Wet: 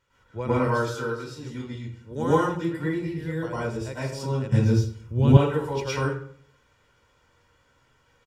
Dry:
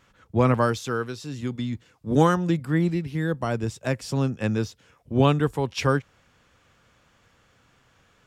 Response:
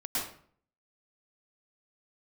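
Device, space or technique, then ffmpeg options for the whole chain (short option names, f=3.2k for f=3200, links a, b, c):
microphone above a desk: -filter_complex "[0:a]aecho=1:1:2.1:0.54[a];[1:a]atrim=start_sample=2205[b];[a][b]afir=irnorm=-1:irlink=0,asettb=1/sr,asplit=3[c][d][e];[c]atrim=end=4.524[f];[d]atrim=start=4.52:end=5.37,asetpts=PTS-STARTPTS,afade=t=in:d=0.004:c=qsin,afade=t=out:st=0.846:d=0.004:c=qsin,bass=f=250:g=15,treble=f=4k:g=6[g];[e]atrim=start=5.366[h];[f][g]acrossfade=d=0.004:c1=hsin:c2=qsin[i];[i][h]acrossfade=d=0.004:c1=qsin:c2=hsin,volume=-9dB"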